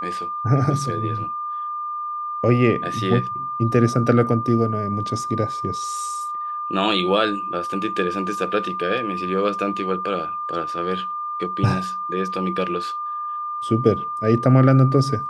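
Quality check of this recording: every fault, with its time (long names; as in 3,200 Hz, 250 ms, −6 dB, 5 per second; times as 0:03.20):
whistle 1,200 Hz −25 dBFS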